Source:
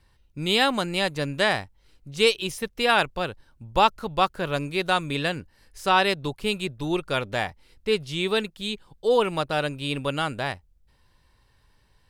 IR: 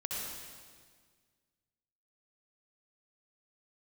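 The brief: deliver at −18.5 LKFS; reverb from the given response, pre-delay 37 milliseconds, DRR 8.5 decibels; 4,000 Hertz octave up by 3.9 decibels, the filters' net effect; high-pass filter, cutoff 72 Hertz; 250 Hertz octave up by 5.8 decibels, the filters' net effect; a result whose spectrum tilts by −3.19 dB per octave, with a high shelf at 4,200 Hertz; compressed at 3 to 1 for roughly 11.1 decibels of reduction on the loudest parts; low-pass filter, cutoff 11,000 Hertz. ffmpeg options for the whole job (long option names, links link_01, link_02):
-filter_complex "[0:a]highpass=72,lowpass=11000,equalizer=frequency=250:width_type=o:gain=8,equalizer=frequency=4000:width_type=o:gain=8.5,highshelf=frequency=4200:gain=-7.5,acompressor=threshold=-28dB:ratio=3,asplit=2[link_01][link_02];[1:a]atrim=start_sample=2205,adelay=37[link_03];[link_02][link_03]afir=irnorm=-1:irlink=0,volume=-11.5dB[link_04];[link_01][link_04]amix=inputs=2:normalize=0,volume=12dB"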